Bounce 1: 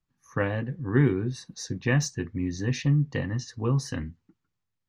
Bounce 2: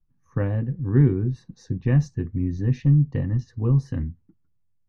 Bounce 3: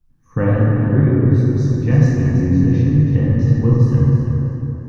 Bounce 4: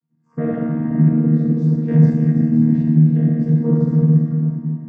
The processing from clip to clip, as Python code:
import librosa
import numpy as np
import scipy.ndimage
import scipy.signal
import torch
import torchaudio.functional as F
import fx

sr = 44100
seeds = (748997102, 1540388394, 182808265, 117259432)

y1 = fx.tilt_eq(x, sr, slope=-4.0)
y1 = F.gain(torch.from_numpy(y1), -5.5).numpy()
y2 = fx.rider(y1, sr, range_db=4, speed_s=0.5)
y2 = fx.echo_feedback(y2, sr, ms=328, feedback_pct=28, wet_db=-9.0)
y2 = fx.rev_plate(y2, sr, seeds[0], rt60_s=3.2, hf_ratio=0.45, predelay_ms=0, drr_db=-6.0)
y2 = F.gain(torch.from_numpy(y2), 2.0).numpy()
y3 = fx.chord_vocoder(y2, sr, chord='bare fifth', root=51)